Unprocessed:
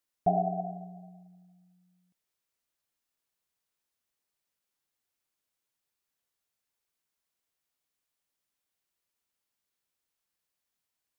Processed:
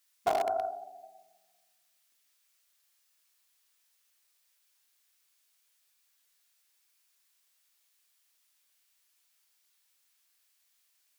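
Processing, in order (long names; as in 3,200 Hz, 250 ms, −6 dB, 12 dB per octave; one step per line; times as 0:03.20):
tilt shelving filter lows −10 dB, about 870 Hz
rectangular room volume 95 cubic metres, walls mixed, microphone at 0.66 metres
in parallel at −10 dB: wrap-around overflow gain 24 dB
on the sum: linear-phase brick-wall high-pass 220 Hz
highs frequency-modulated by the lows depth 0.19 ms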